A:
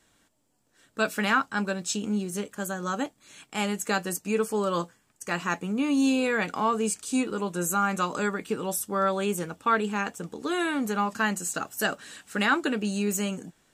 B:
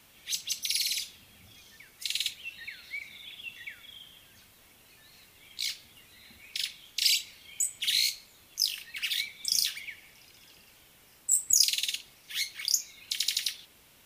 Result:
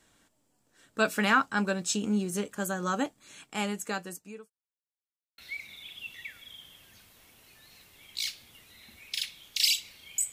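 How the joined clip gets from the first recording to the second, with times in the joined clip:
A
3.24–4.5 fade out linear
4.5–5.38 mute
5.38 switch to B from 2.8 s

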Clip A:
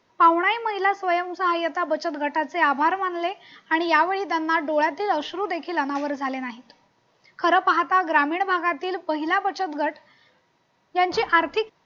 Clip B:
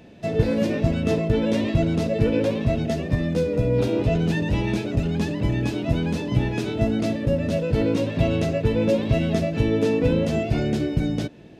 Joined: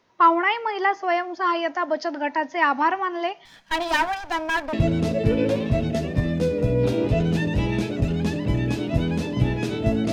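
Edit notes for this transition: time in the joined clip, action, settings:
clip A
3.45–4.73 minimum comb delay 1.2 ms
4.73 switch to clip B from 1.68 s

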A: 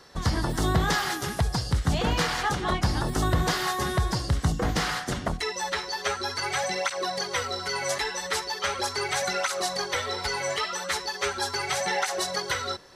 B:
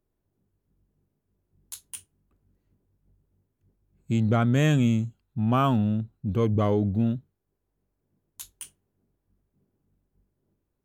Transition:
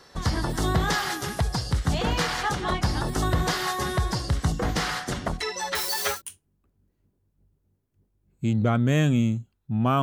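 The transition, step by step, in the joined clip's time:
A
5.75–6.22 switching spikes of -22 dBFS
6.16 switch to B from 1.83 s, crossfade 0.12 s

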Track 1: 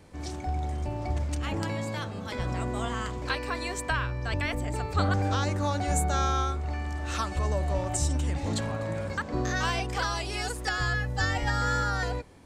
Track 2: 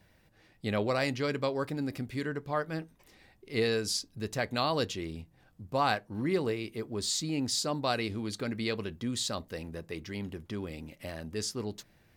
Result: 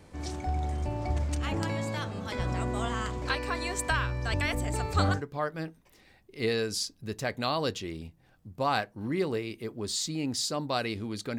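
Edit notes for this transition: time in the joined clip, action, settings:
track 1
3.79–5.22 high shelf 5600 Hz +7.5 dB
5.16 switch to track 2 from 2.3 s, crossfade 0.12 s

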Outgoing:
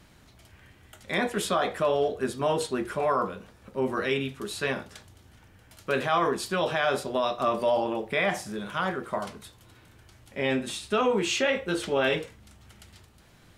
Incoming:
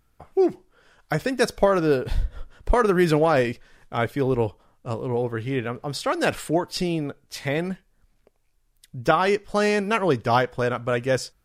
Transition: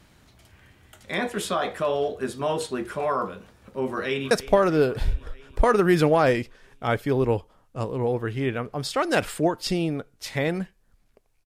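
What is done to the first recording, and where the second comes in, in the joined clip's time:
outgoing
3.89–4.31 echo throw 0.32 s, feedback 70%, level -15.5 dB
4.31 switch to incoming from 1.41 s

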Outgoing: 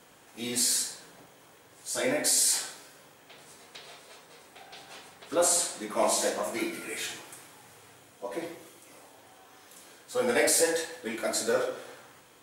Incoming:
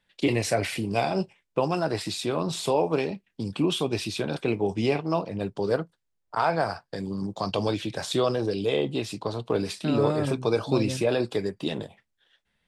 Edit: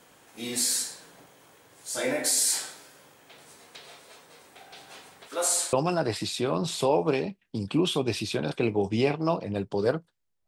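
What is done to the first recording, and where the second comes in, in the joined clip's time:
outgoing
5.27–5.73 HPF 790 Hz 6 dB/oct
5.73 switch to incoming from 1.58 s

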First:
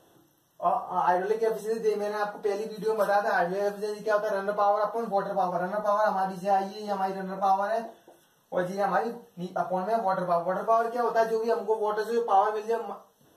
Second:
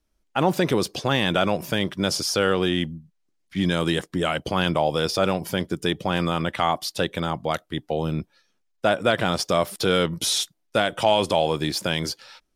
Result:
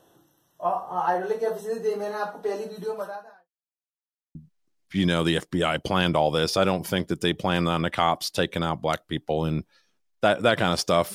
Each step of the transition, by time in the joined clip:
first
2.78–3.49 fade out quadratic
3.49–4.35 mute
4.35 switch to second from 2.96 s

